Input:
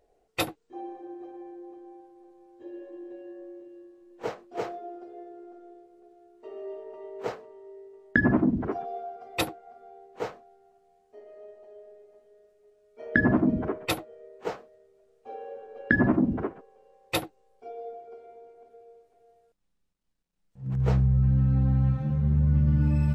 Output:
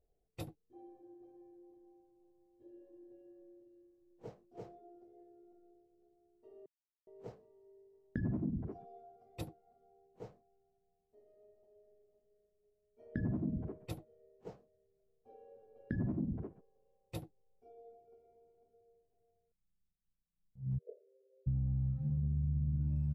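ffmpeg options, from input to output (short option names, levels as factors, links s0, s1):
-filter_complex "[0:a]asplit=3[s0][s1][s2];[s0]afade=t=out:st=20.77:d=0.02[s3];[s1]asuperpass=centerf=490:order=20:qfactor=1.9,afade=t=in:st=20.77:d=0.02,afade=t=out:st=21.46:d=0.02[s4];[s2]afade=t=in:st=21.46:d=0.02[s5];[s3][s4][s5]amix=inputs=3:normalize=0,asplit=3[s6][s7][s8];[s6]atrim=end=6.66,asetpts=PTS-STARTPTS,afade=t=out:st=6.656:d=0.004:c=hsin[s9];[s7]atrim=start=6.66:end=7.07,asetpts=PTS-STARTPTS,volume=0[s10];[s8]atrim=start=7.07,asetpts=PTS-STARTPTS,afade=t=in:d=0.004:c=hsin[s11];[s9][s10][s11]concat=n=3:v=0:a=1,firequalizer=gain_entry='entry(160,0);entry(250,-9);entry(1300,-23);entry(5400,-16)':delay=0.05:min_phase=1,acompressor=threshold=0.0501:ratio=6,volume=0.562"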